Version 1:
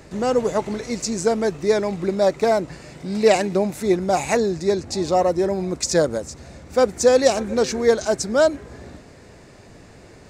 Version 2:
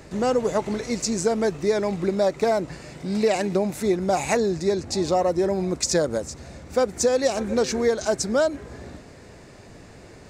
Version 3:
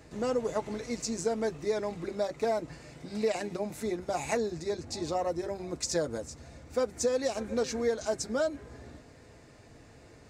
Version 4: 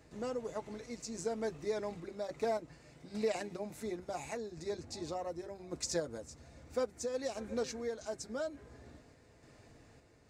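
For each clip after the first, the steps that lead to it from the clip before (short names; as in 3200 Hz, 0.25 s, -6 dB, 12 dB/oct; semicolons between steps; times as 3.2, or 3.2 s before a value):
compressor, threshold -17 dBFS, peak gain reduction 7.5 dB
notch comb 190 Hz; gain -7.5 dB
random-step tremolo; gain -4.5 dB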